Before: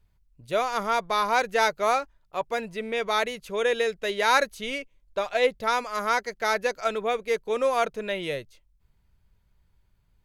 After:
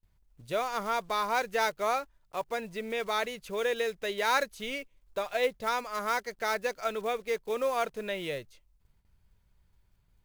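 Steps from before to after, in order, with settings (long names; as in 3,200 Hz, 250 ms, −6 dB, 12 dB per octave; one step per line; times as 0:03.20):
one scale factor per block 5 bits
noise gate with hold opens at −58 dBFS
in parallel at −1.5 dB: downward compressor, threshold −35 dBFS, peak gain reduction 18 dB
on the sum: level −7 dB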